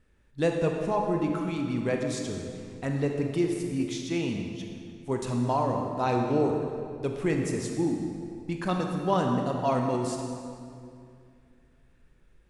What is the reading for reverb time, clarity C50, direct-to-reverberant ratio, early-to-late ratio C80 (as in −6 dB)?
2.4 s, 3.0 dB, 2.0 dB, 4.0 dB